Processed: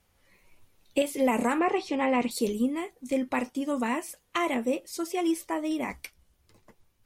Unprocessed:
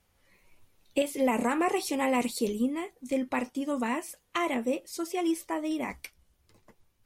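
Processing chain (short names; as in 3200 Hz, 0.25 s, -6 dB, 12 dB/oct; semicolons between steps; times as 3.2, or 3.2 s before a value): 1.59–2.31 LPF 3500 Hz 12 dB/oct; gain +1.5 dB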